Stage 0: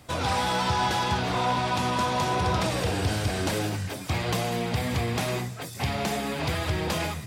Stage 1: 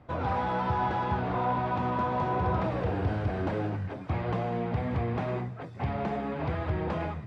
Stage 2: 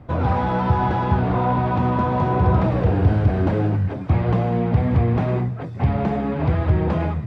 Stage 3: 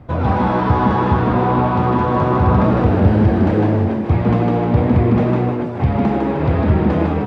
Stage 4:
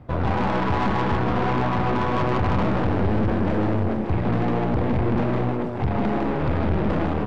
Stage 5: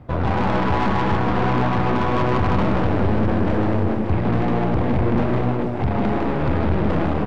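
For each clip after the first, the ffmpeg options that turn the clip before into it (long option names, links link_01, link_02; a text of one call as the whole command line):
ffmpeg -i in.wav -af "lowpass=1400,volume=-2dB" out.wav
ffmpeg -i in.wav -af "lowshelf=frequency=340:gain=9,volume=5dB" out.wav
ffmpeg -i in.wav -filter_complex "[0:a]asplit=6[link_01][link_02][link_03][link_04][link_05][link_06];[link_02]adelay=154,afreqshift=120,volume=-4dB[link_07];[link_03]adelay=308,afreqshift=240,volume=-11.3dB[link_08];[link_04]adelay=462,afreqshift=360,volume=-18.7dB[link_09];[link_05]adelay=616,afreqshift=480,volume=-26dB[link_10];[link_06]adelay=770,afreqshift=600,volume=-33.3dB[link_11];[link_01][link_07][link_08][link_09][link_10][link_11]amix=inputs=6:normalize=0,volume=2.5dB" out.wav
ffmpeg -i in.wav -af "aeval=exprs='(tanh(8.91*val(0)+0.75)-tanh(0.75))/8.91':channel_layout=same" out.wav
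ffmpeg -i in.wav -af "aecho=1:1:251:0.316,volume=2dB" out.wav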